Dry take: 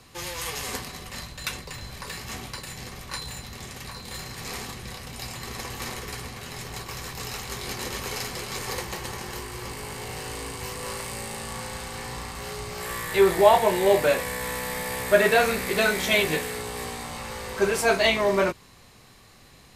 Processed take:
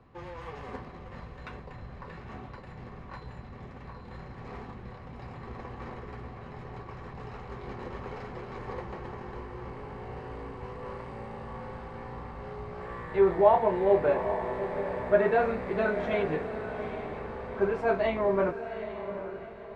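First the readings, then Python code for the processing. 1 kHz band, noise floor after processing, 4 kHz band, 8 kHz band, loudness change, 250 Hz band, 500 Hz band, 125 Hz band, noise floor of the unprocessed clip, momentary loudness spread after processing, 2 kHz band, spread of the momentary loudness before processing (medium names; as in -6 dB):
-4.0 dB, -46 dBFS, under -20 dB, under -35 dB, -4.0 dB, -3.0 dB, -3.0 dB, -3.0 dB, -52 dBFS, 20 LU, -11.0 dB, 16 LU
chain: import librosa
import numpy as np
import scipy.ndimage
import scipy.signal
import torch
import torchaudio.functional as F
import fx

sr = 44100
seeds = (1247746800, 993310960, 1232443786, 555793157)

p1 = scipy.signal.sosfilt(scipy.signal.butter(2, 1200.0, 'lowpass', fs=sr, output='sos'), x)
p2 = p1 + fx.echo_diffused(p1, sr, ms=798, feedback_pct=42, wet_db=-10, dry=0)
y = p2 * 10.0 ** (-3.5 / 20.0)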